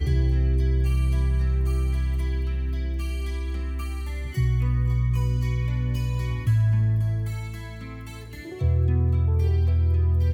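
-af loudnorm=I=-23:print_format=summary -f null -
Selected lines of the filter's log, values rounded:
Input Integrated:    -24.4 LUFS
Input True Peak:     -12.4 dBTP
Input LRA:             2.5 LU
Input Threshold:     -35.0 LUFS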